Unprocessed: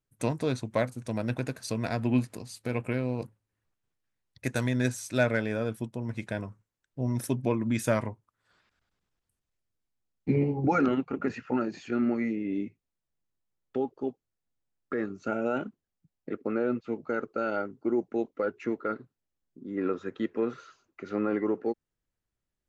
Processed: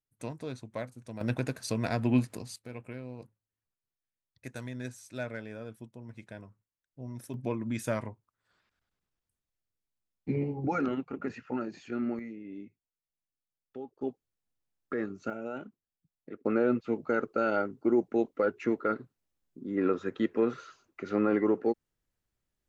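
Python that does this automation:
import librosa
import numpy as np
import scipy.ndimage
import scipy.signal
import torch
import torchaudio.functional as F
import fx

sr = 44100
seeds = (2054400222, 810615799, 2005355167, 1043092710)

y = fx.gain(x, sr, db=fx.steps((0.0, -10.0), (1.21, 0.0), (2.56, -12.0), (7.34, -5.5), (12.19, -12.0), (14.01, -2.0), (15.3, -9.0), (16.45, 2.0)))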